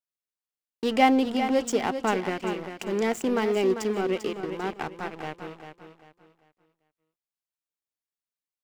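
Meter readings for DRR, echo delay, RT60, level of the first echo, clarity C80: no reverb audible, 395 ms, no reverb audible, −9.0 dB, no reverb audible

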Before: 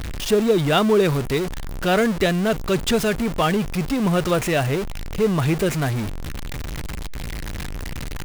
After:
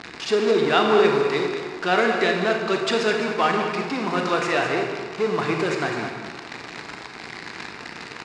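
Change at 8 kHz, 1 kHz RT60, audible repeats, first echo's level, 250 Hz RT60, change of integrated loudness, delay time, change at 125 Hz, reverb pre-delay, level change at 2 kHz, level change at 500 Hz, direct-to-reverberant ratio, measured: −7.5 dB, 1.6 s, 1, −9.5 dB, 1.6 s, −1.0 dB, 208 ms, −11.5 dB, 26 ms, +3.0 dB, 0.0 dB, 1.0 dB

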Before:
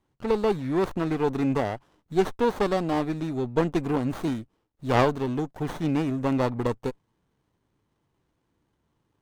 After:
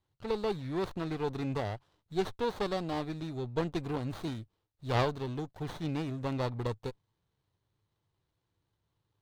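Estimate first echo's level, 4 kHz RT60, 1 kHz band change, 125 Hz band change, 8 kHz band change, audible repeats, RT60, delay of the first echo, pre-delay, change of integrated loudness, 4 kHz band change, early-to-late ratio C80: no echo audible, no reverb audible, −8.5 dB, −5.5 dB, −7.0 dB, no echo audible, no reverb audible, no echo audible, no reverb audible, −8.5 dB, −3.0 dB, no reverb audible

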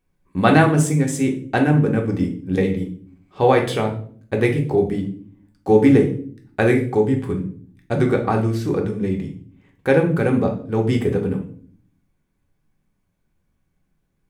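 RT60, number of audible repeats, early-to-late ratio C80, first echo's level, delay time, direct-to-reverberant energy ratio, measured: 0.50 s, no echo audible, 14.5 dB, no echo audible, no echo audible, 1.0 dB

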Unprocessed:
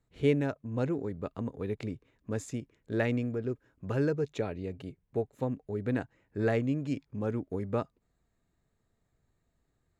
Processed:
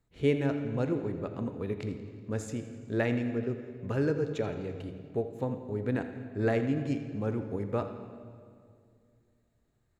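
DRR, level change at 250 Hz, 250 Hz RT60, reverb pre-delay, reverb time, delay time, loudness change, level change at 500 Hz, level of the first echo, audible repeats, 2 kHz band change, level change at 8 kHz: 7.0 dB, +1.0 dB, 2.6 s, 15 ms, 2.2 s, 84 ms, +0.5 dB, +1.0 dB, −14.5 dB, 2, +0.5 dB, +0.5 dB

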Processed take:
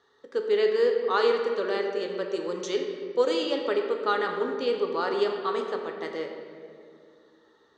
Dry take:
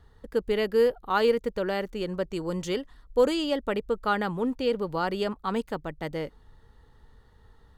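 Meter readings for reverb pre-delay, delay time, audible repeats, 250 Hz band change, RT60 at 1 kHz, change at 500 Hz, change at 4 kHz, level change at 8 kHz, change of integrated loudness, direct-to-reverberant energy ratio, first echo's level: 3 ms, no echo audible, no echo audible, −4.5 dB, 1.9 s, +1.5 dB, +1.0 dB, can't be measured, +1.0 dB, 2.0 dB, no echo audible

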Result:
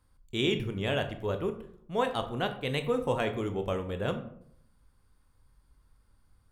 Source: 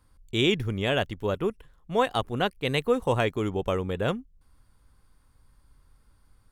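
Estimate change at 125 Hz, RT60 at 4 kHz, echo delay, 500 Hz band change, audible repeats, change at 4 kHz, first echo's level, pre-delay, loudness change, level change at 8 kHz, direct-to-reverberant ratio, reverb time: −4.5 dB, 0.35 s, no echo audible, −4.0 dB, no echo audible, −5.0 dB, no echo audible, 18 ms, −4.5 dB, −5.0 dB, 7.0 dB, 0.65 s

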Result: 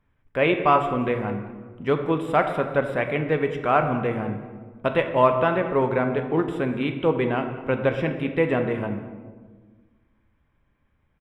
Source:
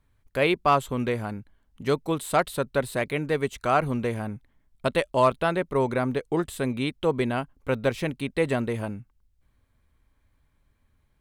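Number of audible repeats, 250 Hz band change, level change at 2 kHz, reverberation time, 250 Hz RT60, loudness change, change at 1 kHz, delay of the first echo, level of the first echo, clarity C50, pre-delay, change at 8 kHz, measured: 1, +3.0 dB, +2.5 dB, 1.5 s, 2.1 s, +3.0 dB, +3.0 dB, 203 ms, −18.0 dB, 8.0 dB, 4 ms, below −15 dB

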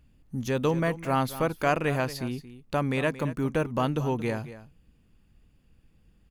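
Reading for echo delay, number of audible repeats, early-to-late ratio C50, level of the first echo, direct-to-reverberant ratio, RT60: 226 ms, 1, no reverb audible, −14.5 dB, no reverb audible, no reverb audible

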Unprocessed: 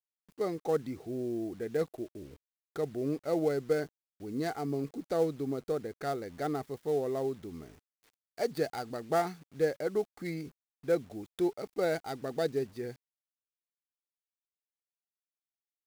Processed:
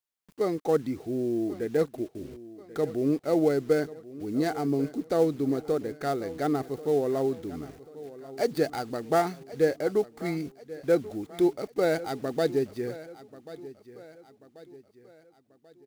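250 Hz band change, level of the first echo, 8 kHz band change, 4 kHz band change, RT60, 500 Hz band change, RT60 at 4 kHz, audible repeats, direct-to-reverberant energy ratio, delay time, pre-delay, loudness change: +7.5 dB, −17.0 dB, +4.5 dB, +4.5 dB, no reverb audible, +5.5 dB, no reverb audible, 3, no reverb audible, 1,087 ms, no reverb audible, +5.5 dB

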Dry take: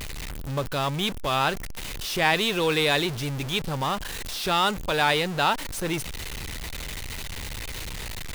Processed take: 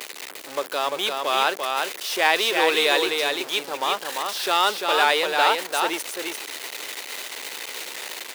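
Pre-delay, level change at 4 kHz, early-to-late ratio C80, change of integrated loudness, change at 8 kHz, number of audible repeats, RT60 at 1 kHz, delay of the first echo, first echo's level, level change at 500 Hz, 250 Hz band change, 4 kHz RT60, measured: no reverb audible, +4.0 dB, no reverb audible, +3.5 dB, +4.0 dB, 1, no reverb audible, 345 ms, −4.0 dB, +3.5 dB, −4.0 dB, no reverb audible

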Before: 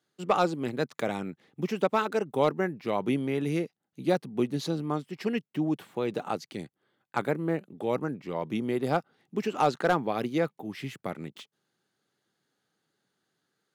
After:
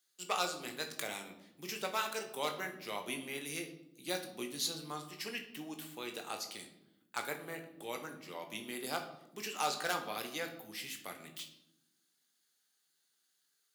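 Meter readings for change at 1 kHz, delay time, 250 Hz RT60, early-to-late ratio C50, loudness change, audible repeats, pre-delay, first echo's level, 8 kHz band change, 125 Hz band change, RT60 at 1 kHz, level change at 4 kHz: −9.5 dB, no echo audible, 1.5 s, 9.5 dB, −10.0 dB, no echo audible, 17 ms, no echo audible, +7.5 dB, −19.5 dB, 0.75 s, +2.0 dB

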